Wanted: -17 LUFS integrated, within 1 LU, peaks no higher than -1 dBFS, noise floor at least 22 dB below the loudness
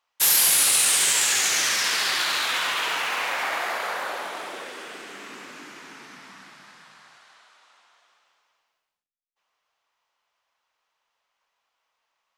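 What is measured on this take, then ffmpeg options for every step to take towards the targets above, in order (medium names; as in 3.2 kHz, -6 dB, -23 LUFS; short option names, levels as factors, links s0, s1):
loudness -20.0 LUFS; peak level -7.0 dBFS; loudness target -17.0 LUFS
-> -af "volume=1.41"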